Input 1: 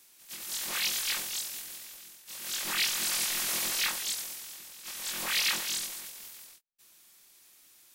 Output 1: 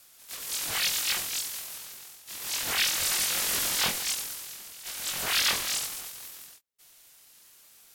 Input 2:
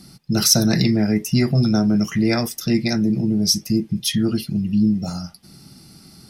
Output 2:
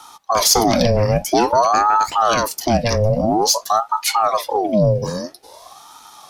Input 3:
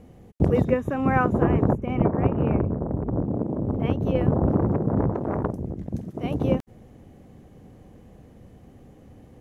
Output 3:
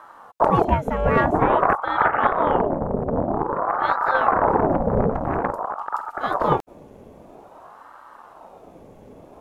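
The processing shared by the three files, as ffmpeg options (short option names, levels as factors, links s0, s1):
-af "acontrast=80,aeval=exprs='val(0)*sin(2*PI*700*n/s+700*0.55/0.5*sin(2*PI*0.5*n/s))':c=same,volume=0.891"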